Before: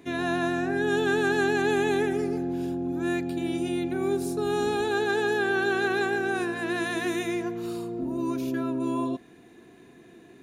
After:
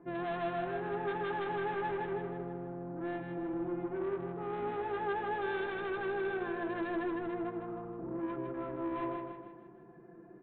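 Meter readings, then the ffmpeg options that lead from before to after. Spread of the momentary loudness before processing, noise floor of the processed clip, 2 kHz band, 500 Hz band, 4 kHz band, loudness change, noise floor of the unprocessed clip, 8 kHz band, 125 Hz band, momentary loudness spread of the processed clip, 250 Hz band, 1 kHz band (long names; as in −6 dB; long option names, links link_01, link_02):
6 LU, −55 dBFS, −13.0 dB, −9.5 dB, −16.5 dB, −10.0 dB, −52 dBFS, below −35 dB, −9.0 dB, 7 LU, −11.0 dB, −5.5 dB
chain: -af "lowpass=frequency=1400:width=0.5412,lowpass=frequency=1400:width=1.3066,bandreject=frequency=50:width_type=h:width=6,bandreject=frequency=100:width_type=h:width=6,bandreject=frequency=150:width_type=h:width=6,bandreject=frequency=200:width_type=h:width=6,bandreject=frequency=250:width_type=h:width=6,bandreject=frequency=300:width_type=h:width=6,bandreject=frequency=350:width_type=h:width=6,aecho=1:1:5.8:0.91,aresample=8000,asoftclip=type=tanh:threshold=-26dB,aresample=44100,aecho=1:1:157|314|471|628|785|942:0.562|0.259|0.119|0.0547|0.0252|0.0116,volume=-6.5dB"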